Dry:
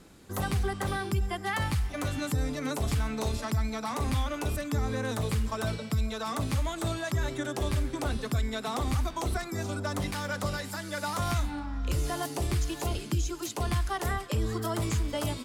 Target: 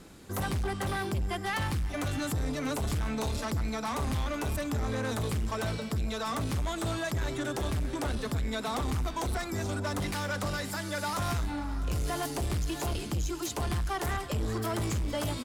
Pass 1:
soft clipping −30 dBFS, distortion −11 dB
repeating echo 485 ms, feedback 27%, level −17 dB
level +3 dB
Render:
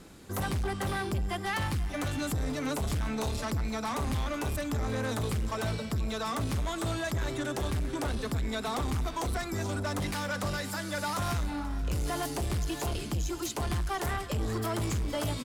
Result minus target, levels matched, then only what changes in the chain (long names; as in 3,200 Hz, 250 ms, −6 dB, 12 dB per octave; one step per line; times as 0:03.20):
echo 169 ms early
change: repeating echo 654 ms, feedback 27%, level −17 dB